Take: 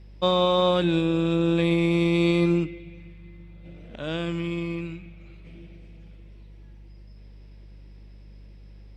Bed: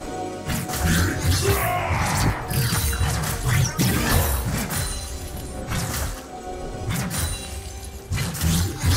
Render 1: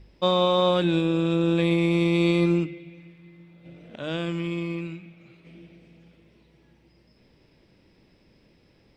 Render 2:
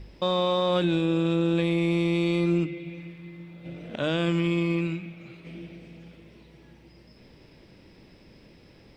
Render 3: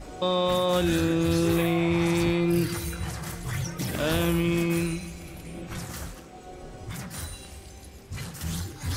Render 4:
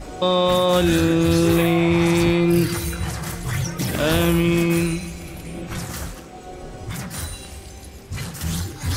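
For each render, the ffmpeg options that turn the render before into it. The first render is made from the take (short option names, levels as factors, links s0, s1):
-af "bandreject=f=50:t=h:w=4,bandreject=f=100:t=h:w=4,bandreject=f=150:t=h:w=4,bandreject=f=200:t=h:w=4"
-af "acontrast=72,alimiter=limit=0.158:level=0:latency=1:release=336"
-filter_complex "[1:a]volume=0.282[s0];[0:a][s0]amix=inputs=2:normalize=0"
-af "volume=2.11"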